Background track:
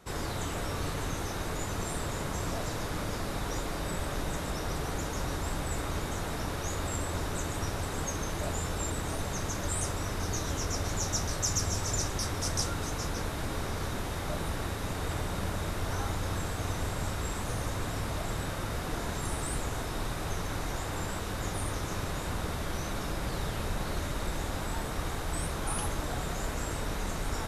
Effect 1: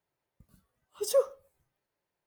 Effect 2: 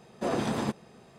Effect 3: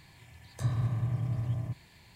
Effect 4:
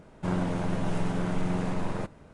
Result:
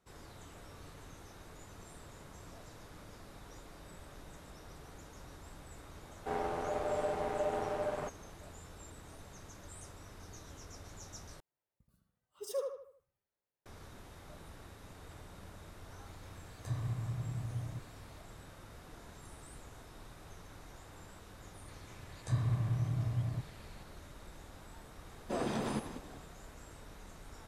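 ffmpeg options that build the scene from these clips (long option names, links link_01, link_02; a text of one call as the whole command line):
ffmpeg -i bed.wav -i cue0.wav -i cue1.wav -i cue2.wav -i cue3.wav -filter_complex "[3:a]asplit=2[link_01][link_02];[0:a]volume=-18.5dB[link_03];[4:a]aeval=exprs='val(0)*sin(2*PI*600*n/s)':channel_layout=same[link_04];[1:a]asplit=2[link_05][link_06];[link_06]adelay=77,lowpass=frequency=3800:poles=1,volume=-4dB,asplit=2[link_07][link_08];[link_08]adelay=77,lowpass=frequency=3800:poles=1,volume=0.42,asplit=2[link_09][link_10];[link_10]adelay=77,lowpass=frequency=3800:poles=1,volume=0.42,asplit=2[link_11][link_12];[link_12]adelay=77,lowpass=frequency=3800:poles=1,volume=0.42,asplit=2[link_13][link_14];[link_14]adelay=77,lowpass=frequency=3800:poles=1,volume=0.42[link_15];[link_05][link_07][link_09][link_11][link_13][link_15]amix=inputs=6:normalize=0[link_16];[link_02]aresample=22050,aresample=44100[link_17];[2:a]asplit=5[link_18][link_19][link_20][link_21][link_22];[link_19]adelay=192,afreqshift=30,volume=-10.5dB[link_23];[link_20]adelay=384,afreqshift=60,volume=-19.9dB[link_24];[link_21]adelay=576,afreqshift=90,volume=-29.2dB[link_25];[link_22]adelay=768,afreqshift=120,volume=-38.6dB[link_26];[link_18][link_23][link_24][link_25][link_26]amix=inputs=5:normalize=0[link_27];[link_03]asplit=2[link_28][link_29];[link_28]atrim=end=11.404[link_30];[link_16]atrim=end=2.26,asetpts=PTS-STARTPTS,volume=-12dB[link_31];[link_29]atrim=start=13.656[link_32];[link_04]atrim=end=2.33,asetpts=PTS-STARTPTS,volume=-5.5dB,afade=type=in:duration=0.004:curve=hsin,afade=type=out:start_time=2.326:duration=0.004:curve=hsin,adelay=6030[link_33];[link_01]atrim=end=2.15,asetpts=PTS-STARTPTS,volume=-7.5dB,afade=type=in:duration=0.004:curve=hsin,afade=type=out:start_time=2.146:duration=0.004:curve=hsin,adelay=16060[link_34];[link_17]atrim=end=2.15,asetpts=PTS-STARTPTS,volume=-2.5dB,afade=type=in:duration=0.004:curve=hsin,afade=type=out:start_time=2.146:duration=0.004:curve=hsin,adelay=21680[link_35];[link_27]atrim=end=1.18,asetpts=PTS-STARTPTS,volume=-6.5dB,afade=type=in:duration=0.004:curve=hsin,afade=type=out:start_time=1.176:duration=0.004:curve=hsin,adelay=25080[link_36];[link_30][link_31]acrossfade=duration=0.004:curve1=hsin:curve2=hsin[link_37];[link_37][link_32]acrossfade=duration=0.004:curve1=hsin:curve2=hsin[link_38];[link_38][link_33][link_34][link_35][link_36]amix=inputs=5:normalize=0" out.wav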